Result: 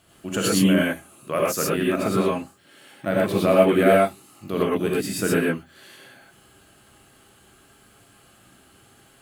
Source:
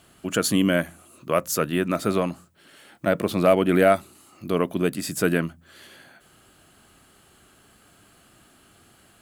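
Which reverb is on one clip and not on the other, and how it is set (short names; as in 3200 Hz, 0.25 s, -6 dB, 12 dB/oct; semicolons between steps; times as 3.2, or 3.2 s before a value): non-linear reverb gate 0.14 s rising, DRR -5 dB; gain -4.5 dB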